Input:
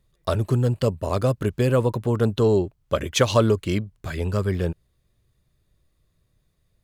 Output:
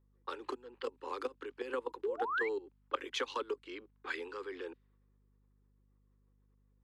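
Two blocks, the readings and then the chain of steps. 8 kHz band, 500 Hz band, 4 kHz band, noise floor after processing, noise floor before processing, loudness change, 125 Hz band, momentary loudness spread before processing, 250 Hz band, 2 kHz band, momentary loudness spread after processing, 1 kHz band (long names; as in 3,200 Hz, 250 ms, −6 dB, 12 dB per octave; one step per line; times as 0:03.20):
−21.5 dB, −16.5 dB, −13.5 dB, −71 dBFS, −69 dBFS, −17.0 dB, below −40 dB, 8 LU, −23.0 dB, −6.0 dB, 11 LU, −9.5 dB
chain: output level in coarse steps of 18 dB
sound drawn into the spectrogram rise, 0:02.03–0:02.49, 370–2,400 Hz −28 dBFS
Butterworth band-reject 640 Hz, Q 2.2
downward compressor 12 to 1, threshold −33 dBFS, peak gain reduction 17 dB
three-way crossover with the lows and the highs turned down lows −22 dB, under 340 Hz, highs −15 dB, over 4,700 Hz
low-pass that shuts in the quiet parts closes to 870 Hz, open at −41 dBFS
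Butterworth high-pass 250 Hz 72 dB per octave
mains hum 50 Hz, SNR 29 dB
level +4.5 dB
AC-3 64 kbit/s 32,000 Hz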